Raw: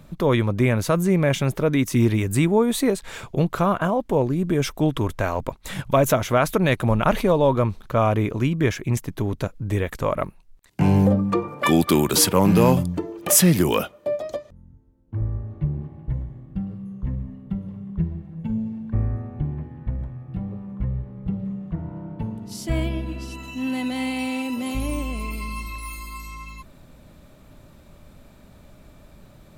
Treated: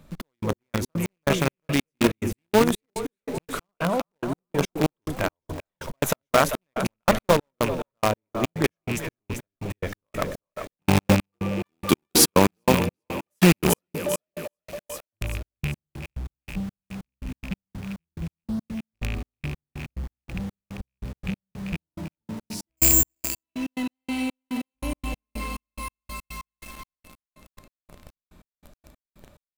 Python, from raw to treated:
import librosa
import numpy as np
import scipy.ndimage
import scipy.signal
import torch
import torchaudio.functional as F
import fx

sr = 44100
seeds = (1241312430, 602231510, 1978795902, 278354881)

p1 = fx.rattle_buzz(x, sr, strikes_db=-20.0, level_db=-17.0)
p2 = fx.peak_eq(p1, sr, hz=120.0, db=-9.5, octaves=0.33)
p3 = p2 + fx.echo_split(p2, sr, split_hz=510.0, low_ms=224, high_ms=392, feedback_pct=52, wet_db=-7.5, dry=0)
p4 = fx.resample_bad(p3, sr, factor=6, down='filtered', up='zero_stuff', at=(22.77, 23.43))
p5 = fx.quant_companded(p4, sr, bits=2)
p6 = p4 + F.gain(torch.from_numpy(p5), -8.0).numpy()
p7 = fx.step_gate(p6, sr, bpm=142, pattern='xx..x..x.x..', floor_db=-60.0, edge_ms=4.5)
y = F.gain(torch.from_numpy(p7), -4.5).numpy()